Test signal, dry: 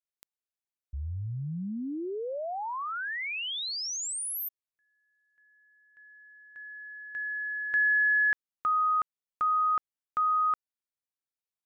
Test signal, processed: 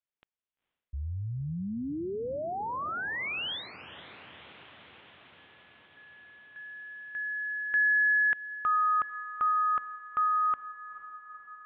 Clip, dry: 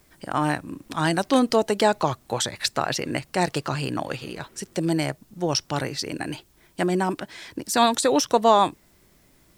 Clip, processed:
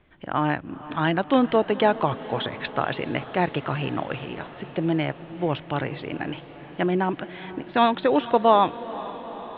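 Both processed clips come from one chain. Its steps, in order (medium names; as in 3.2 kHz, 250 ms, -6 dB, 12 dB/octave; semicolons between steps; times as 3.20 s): steep low-pass 3.5 kHz 72 dB/octave; echo that smears into a reverb 464 ms, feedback 71%, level -16 dB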